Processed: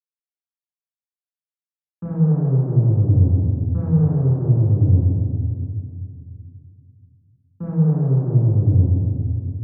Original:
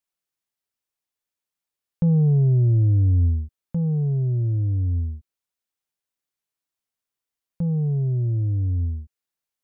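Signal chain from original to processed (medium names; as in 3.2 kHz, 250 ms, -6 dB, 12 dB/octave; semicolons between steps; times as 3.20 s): expander -27 dBFS; bass shelf 310 Hz -9.5 dB; peak limiter -27.5 dBFS, peak gain reduction 6.5 dB; valve stage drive 32 dB, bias 0.5; reverberation RT60 2.3 s, pre-delay 3 ms, DRR -5.5 dB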